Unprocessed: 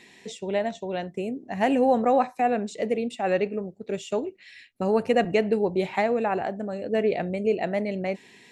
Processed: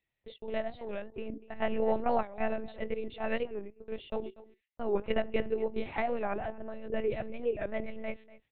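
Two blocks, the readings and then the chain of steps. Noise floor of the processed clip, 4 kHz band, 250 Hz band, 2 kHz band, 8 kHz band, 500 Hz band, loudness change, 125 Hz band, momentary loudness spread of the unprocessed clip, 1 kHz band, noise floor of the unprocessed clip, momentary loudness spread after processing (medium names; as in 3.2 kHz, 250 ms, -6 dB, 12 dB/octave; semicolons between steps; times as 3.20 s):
-85 dBFS, -9.0 dB, -11.0 dB, -7.5 dB, under -30 dB, -8.5 dB, -9.0 dB, -11.5 dB, 11 LU, -10.0 dB, -54 dBFS, 11 LU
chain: gate -38 dBFS, range -27 dB; bass shelf 120 Hz -8 dB; on a send: delay 244 ms -18.5 dB; on the sum: monotone LPC vocoder at 8 kHz 220 Hz; warped record 45 rpm, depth 160 cents; trim -7 dB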